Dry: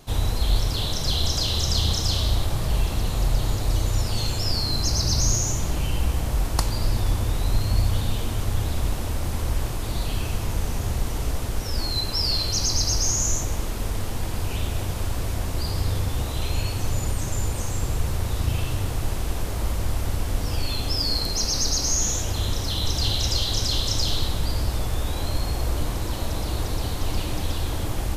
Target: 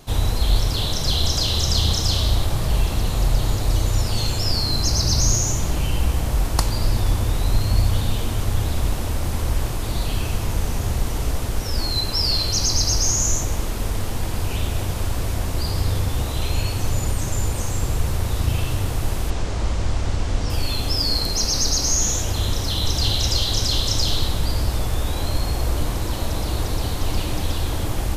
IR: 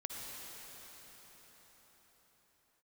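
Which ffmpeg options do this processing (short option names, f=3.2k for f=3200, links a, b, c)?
-filter_complex "[0:a]asettb=1/sr,asplit=3[a][b][c];[a]atrim=end=19.304[d];[b]atrim=start=19.3:end=20.5,asetpts=PTS-STARTPTS,afade=t=in:d=0.004:c=qsin,afade=t=out:st=1.196:d=0.004:c=qsin,lowpass=f=7.5k:w=0.5412,lowpass=f=7.5k:w=1.3066[e];[c]atrim=start=20.496[f];[d][e]acrossfade=d=0.004:c1=hsin:c2=qsin[g];[g][f]acrossfade=d=0.004:c1=qsin:c2=hsin,volume=3dB"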